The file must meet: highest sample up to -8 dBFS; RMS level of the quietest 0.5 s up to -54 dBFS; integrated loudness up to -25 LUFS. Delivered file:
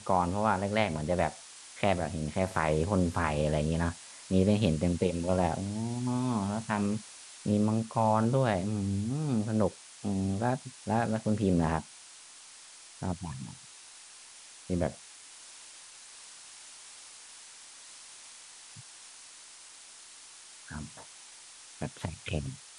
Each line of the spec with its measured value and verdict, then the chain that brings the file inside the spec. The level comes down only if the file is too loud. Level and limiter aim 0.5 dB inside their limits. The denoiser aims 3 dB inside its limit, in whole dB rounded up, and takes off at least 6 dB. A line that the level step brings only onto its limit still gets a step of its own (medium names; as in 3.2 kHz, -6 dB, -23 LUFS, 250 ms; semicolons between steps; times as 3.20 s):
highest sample -11.0 dBFS: pass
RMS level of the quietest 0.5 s -51 dBFS: fail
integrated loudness -30.5 LUFS: pass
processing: noise reduction 6 dB, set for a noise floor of -51 dBFS